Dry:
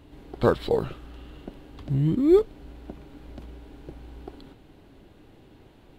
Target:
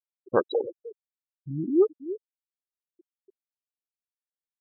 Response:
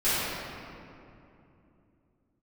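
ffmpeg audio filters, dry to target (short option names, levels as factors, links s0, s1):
-filter_complex "[0:a]atempo=1.3,bass=f=250:g=-12,treble=f=4000:g=12,asplit=2[s0][s1];[s1]aecho=0:1:305:0.211[s2];[s0][s2]amix=inputs=2:normalize=0,afftfilt=real='re*gte(hypot(re,im),0.1)':imag='im*gte(hypot(re,im),0.1)':win_size=1024:overlap=0.75"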